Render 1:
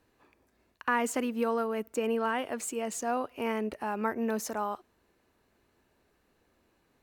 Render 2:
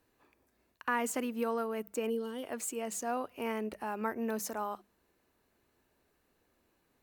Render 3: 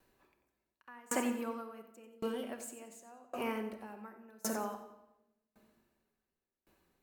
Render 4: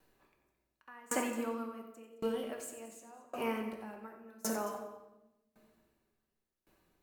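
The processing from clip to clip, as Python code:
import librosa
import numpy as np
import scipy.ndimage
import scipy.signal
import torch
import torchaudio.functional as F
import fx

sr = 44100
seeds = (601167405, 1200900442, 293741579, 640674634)

y1 = fx.hum_notches(x, sr, base_hz=50, count=4)
y1 = fx.spec_box(y1, sr, start_s=2.1, length_s=0.33, low_hz=520.0, high_hz=2900.0, gain_db=-16)
y1 = fx.high_shelf(y1, sr, hz=11000.0, db=9.5)
y1 = y1 * 10.0 ** (-4.0 / 20.0)
y2 = fx.echo_feedback(y1, sr, ms=91, feedback_pct=44, wet_db=-10)
y2 = fx.room_shoebox(y2, sr, seeds[0], volume_m3=1900.0, walls='mixed', distance_m=1.1)
y2 = fx.tremolo_decay(y2, sr, direction='decaying', hz=0.9, depth_db=30)
y2 = y2 * 10.0 ** (2.5 / 20.0)
y3 = y2 + 10.0 ** (-16.5 / 20.0) * np.pad(y2, (int(218 * sr / 1000.0), 0))[:len(y2)]
y3 = fx.room_shoebox(y3, sr, seeds[1], volume_m3=190.0, walls='mixed', distance_m=0.45)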